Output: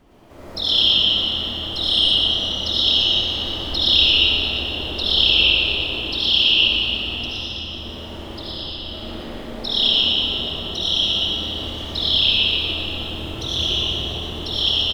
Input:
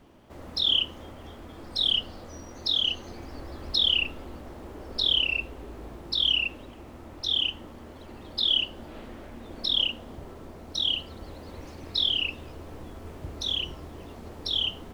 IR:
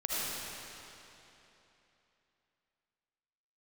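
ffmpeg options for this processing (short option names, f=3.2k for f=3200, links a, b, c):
-filter_complex "[0:a]asettb=1/sr,asplit=3[a][b][c];[a]atrim=end=6.884[d];[b]atrim=start=6.88:end=8.85,asetpts=PTS-STARTPTS,afade=t=in:d=0.004:c=qsin,afade=t=out:st=1.966:d=0.004:c=qsin,acrossover=split=180[e][f];[f]acompressor=threshold=-38dB:ratio=6[g];[e][g]amix=inputs=2:normalize=0[h];[c]atrim=start=8.846[i];[d][h]acrossfade=d=0.004:c1=hsin:c2=qsin[j];[j][i]acrossfade=d=0.004:c1=qsin:c2=hsin,aecho=1:1:117:0.708[k];[1:a]atrim=start_sample=2205[l];[k][l]afir=irnorm=-1:irlink=0,volume=1.5dB"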